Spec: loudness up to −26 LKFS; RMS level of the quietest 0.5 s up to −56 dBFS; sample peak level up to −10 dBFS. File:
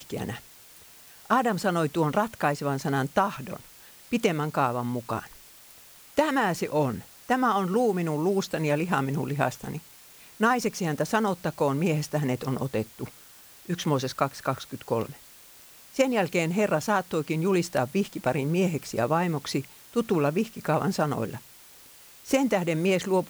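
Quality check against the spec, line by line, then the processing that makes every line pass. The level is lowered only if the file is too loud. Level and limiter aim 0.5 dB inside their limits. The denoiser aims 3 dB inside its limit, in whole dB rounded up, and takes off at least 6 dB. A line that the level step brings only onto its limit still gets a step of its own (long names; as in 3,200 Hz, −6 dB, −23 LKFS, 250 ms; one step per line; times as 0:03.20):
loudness −27.0 LKFS: in spec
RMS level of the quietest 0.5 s −51 dBFS: out of spec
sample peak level −8.0 dBFS: out of spec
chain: broadband denoise 8 dB, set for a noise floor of −51 dBFS
brickwall limiter −10.5 dBFS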